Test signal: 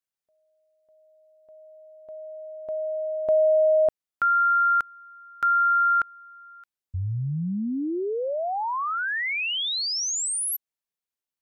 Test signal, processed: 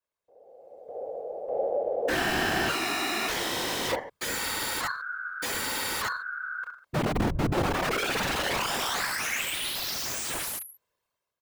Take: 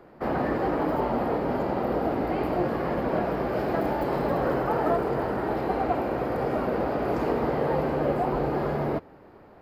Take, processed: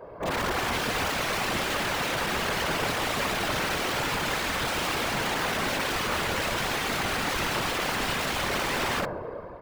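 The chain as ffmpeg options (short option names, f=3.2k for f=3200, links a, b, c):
-af "dynaudnorm=f=170:g=7:m=10.5dB,aeval=exprs='val(0)*sin(2*PI*100*n/s)':c=same,aeval=exprs='0.237*(abs(mod(val(0)/0.237+3,4)-2)-1)':c=same,equalizer=f=125:t=o:w=1:g=5,equalizer=f=500:t=o:w=1:g=4,equalizer=f=1k:t=o:w=1:g=5,acompressor=threshold=-33dB:ratio=2:attack=0.32:release=65:knee=6:detection=peak,aecho=1:1:1.9:0.94,aecho=1:1:30|64.5|104.2|149.8|202.3:0.631|0.398|0.251|0.158|0.1,aeval=exprs='(mod(15*val(0)+1,2)-1)/15':c=same,highshelf=f=3.9k:g=-9.5,bandreject=f=60:t=h:w=6,bandreject=f=120:t=h:w=6,afftfilt=real='hypot(re,im)*cos(2*PI*random(0))':imag='hypot(re,im)*sin(2*PI*random(1))':win_size=512:overlap=0.75,volume=8.5dB"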